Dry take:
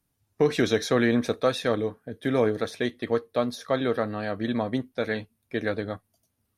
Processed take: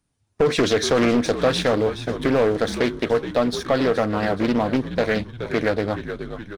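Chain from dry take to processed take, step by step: downsampling 22050 Hz; sample leveller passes 2; frequency-shifting echo 0.423 s, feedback 41%, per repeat -62 Hz, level -13 dB; compressor 1.5:1, threshold -34 dBFS, peak gain reduction 7.5 dB; Doppler distortion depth 0.4 ms; gain +6.5 dB

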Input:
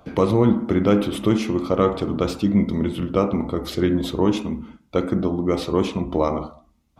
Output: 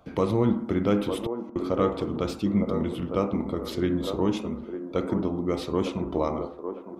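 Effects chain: 1.09–1.56 flipped gate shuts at -15 dBFS, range -36 dB; band-limited delay 0.905 s, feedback 37%, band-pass 590 Hz, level -6 dB; gain -6 dB

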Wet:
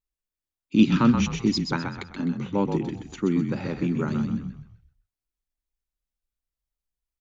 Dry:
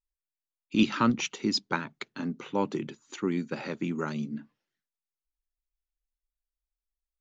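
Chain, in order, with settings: bell 150 Hz +8.5 dB 2.9 oct; on a send: frequency-shifting echo 0.128 s, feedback 38%, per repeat -38 Hz, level -6 dB; on the sum: gain -1 dB

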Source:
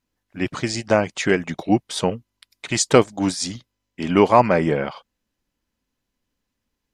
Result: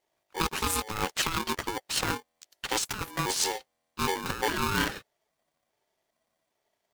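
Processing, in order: trilling pitch shifter +9 st, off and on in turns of 0.407 s; negative-ratio compressor -24 dBFS, ratio -1; polarity switched at an audio rate 650 Hz; gain -5.5 dB

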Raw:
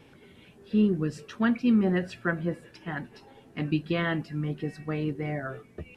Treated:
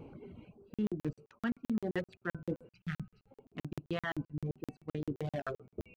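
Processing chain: Wiener smoothing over 25 samples; de-hum 126.3 Hz, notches 12; reverb removal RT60 1.3 s; spectral gain 2.71–3.31, 210–1200 Hz -23 dB; reverse; compressor 4:1, threshold -41 dBFS, peak gain reduction 18 dB; reverse; crackling interface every 0.13 s, samples 2048, zero, from 0.74; gain +6.5 dB

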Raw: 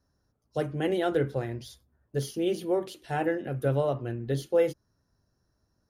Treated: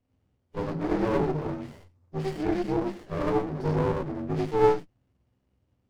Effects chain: inharmonic rescaling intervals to 79%; non-linear reverb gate 0.12 s rising, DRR -2.5 dB; running maximum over 33 samples

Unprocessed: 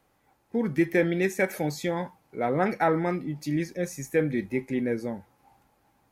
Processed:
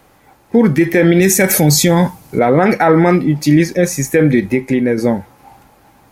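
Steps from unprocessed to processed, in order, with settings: 1.2–2.39 tone controls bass +9 dB, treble +11 dB; 4.39–4.98 compressor, threshold -29 dBFS, peak gain reduction 7.5 dB; maximiser +19.5 dB; gain -1 dB

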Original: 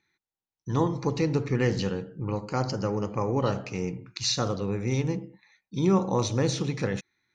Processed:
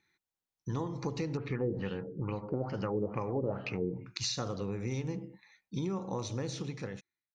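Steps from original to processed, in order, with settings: ending faded out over 1.58 s; compressor, threshold -31 dBFS, peak gain reduction 12.5 dB; 1.37–4.05 LFO low-pass sine 2.3 Hz 370–3500 Hz; gain -1 dB

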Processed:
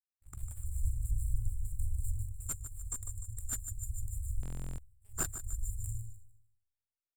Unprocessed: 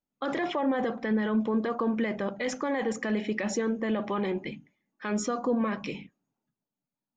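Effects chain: half-wave gain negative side -3 dB; EQ curve 130 Hz 0 dB, 2500 Hz +9 dB, 4900 Hz -28 dB, 7900 Hz +7 dB; on a send: feedback echo 0.15 s, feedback 54%, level -9 dB; on the sum: spring tank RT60 1.7 s, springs 45 ms, chirp 55 ms, DRR 6 dB; in parallel at -9 dB: hard clip -25 dBFS, distortion -7 dB; on the sum: FFT band-reject 110–7100 Hz; added harmonics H 7 -17 dB, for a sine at -25 dBFS; vocal rider within 4 dB 0.5 s; high shelf 4000 Hz -9.5 dB; stuck buffer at 4.41, samples 1024, times 15; gain +14 dB

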